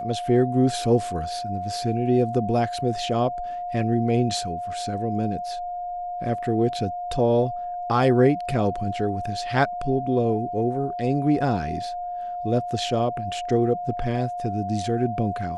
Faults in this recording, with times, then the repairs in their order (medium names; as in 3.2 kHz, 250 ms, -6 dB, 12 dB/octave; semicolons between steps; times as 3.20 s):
whine 710 Hz -28 dBFS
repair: band-stop 710 Hz, Q 30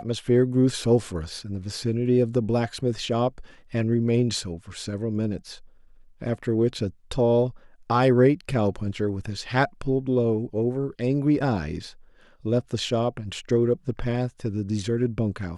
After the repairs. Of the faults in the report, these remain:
nothing left